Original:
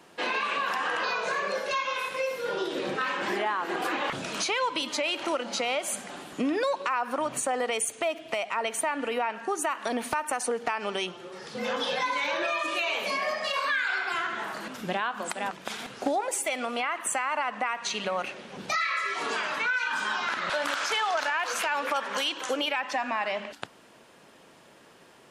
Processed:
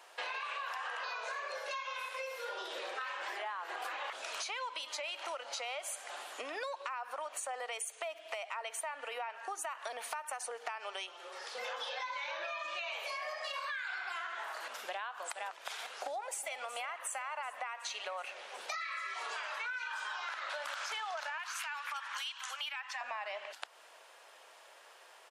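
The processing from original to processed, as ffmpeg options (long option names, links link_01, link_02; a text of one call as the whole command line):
ffmpeg -i in.wav -filter_complex "[0:a]asettb=1/sr,asplit=3[link_01][link_02][link_03];[link_01]atrim=end=11.894[link_04];[link_02]atrim=start=11.89:end=12.92,asetpts=PTS-STARTPTS,afade=type=in:duration=0.004:curve=qsin,afade=type=out:start_time=1.026:duration=0.004:curve=qsin,lowpass=frequency=6700:width=0.5412,lowpass=frequency=6700:width=1.3066[link_05];[link_03]atrim=start=12.916[link_06];[link_04][link_05]acrossfade=duration=0.004:curve1=hsin:curve2=qsin[link_07];[link_07][link_06]acrossfade=duration=0.004:curve1=qsin:curve2=hsin,asplit=2[link_08][link_09];[link_09]afade=type=in:start_time=15.91:duration=0.01,afade=type=out:start_time=16.6:duration=0.01,aecho=0:1:370|740|1110|1480|1850|2220|2590|2960|3330:0.199526|0.139668|0.0977679|0.0684375|0.0479062|0.0335344|0.0234741|0.0164318|0.0115023[link_10];[link_08][link_10]amix=inputs=2:normalize=0,asettb=1/sr,asplit=3[link_11][link_12][link_13];[link_11]atrim=end=21.384[link_14];[link_12]atrim=start=21.38:end=23.01,asetpts=PTS-STARTPTS,afade=type=in:duration=0.004:curve=qsin,afade=type=out:start_time=1.626:duration=0.004:curve=qsin,highpass=frequency=1000:width=0.5412,highpass=frequency=1000:width=1.3066[link_15];[link_13]atrim=start=23.006[link_16];[link_14][link_15]acrossfade=duration=0.004:curve1=hsin:curve2=qsin[link_17];[link_17][link_16]acrossfade=duration=0.004:curve1=qsin:curve2=hsin,highpass=frequency=570:width=0.5412,highpass=frequency=570:width=1.3066,acompressor=threshold=-38dB:ratio=4,volume=-1dB" out.wav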